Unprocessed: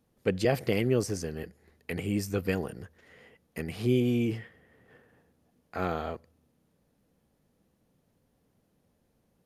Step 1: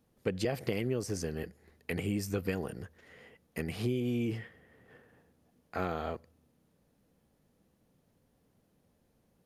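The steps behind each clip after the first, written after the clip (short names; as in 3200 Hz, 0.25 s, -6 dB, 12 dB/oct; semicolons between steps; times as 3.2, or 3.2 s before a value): compressor 6:1, threshold -28 dBFS, peak gain reduction 8.5 dB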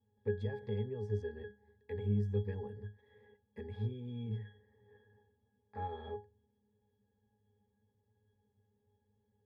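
bell 200 Hz -8 dB 1.2 oct; octave resonator G#, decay 0.24 s; gain +9.5 dB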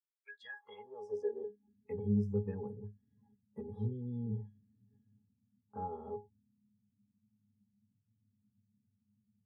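high-pass sweep 2700 Hz -> 150 Hz, 0.14–1.96; spectral noise reduction 29 dB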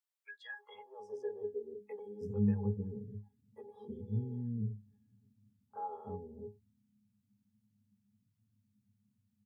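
bands offset in time highs, lows 0.31 s, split 410 Hz; gain +1.5 dB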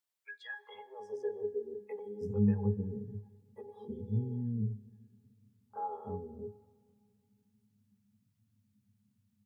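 plate-style reverb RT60 2.2 s, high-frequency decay 0.8×, DRR 19 dB; gain +3 dB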